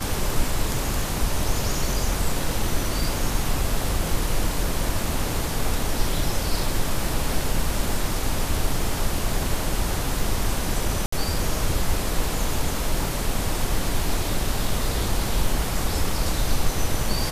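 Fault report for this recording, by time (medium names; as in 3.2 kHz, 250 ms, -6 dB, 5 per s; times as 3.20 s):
11.06–11.12 s: dropout 64 ms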